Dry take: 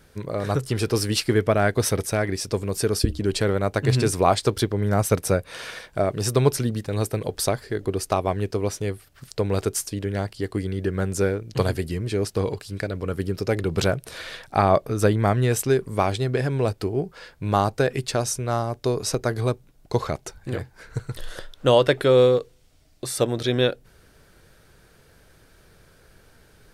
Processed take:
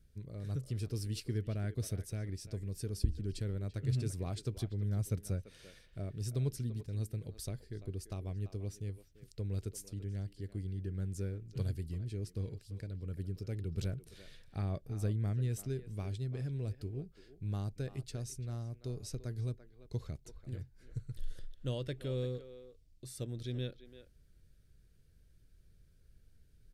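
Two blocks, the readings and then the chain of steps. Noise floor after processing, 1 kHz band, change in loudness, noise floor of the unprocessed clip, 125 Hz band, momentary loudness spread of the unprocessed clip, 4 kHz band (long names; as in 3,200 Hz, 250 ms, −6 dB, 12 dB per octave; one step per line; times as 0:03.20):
−64 dBFS, −30.5 dB, −16.0 dB, −56 dBFS, −10.5 dB, 12 LU, −21.0 dB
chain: guitar amp tone stack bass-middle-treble 10-0-1
far-end echo of a speakerphone 340 ms, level −12 dB
level +1 dB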